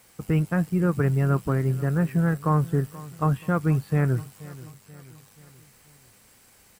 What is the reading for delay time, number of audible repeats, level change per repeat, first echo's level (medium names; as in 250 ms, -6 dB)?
481 ms, 3, -6.0 dB, -19.0 dB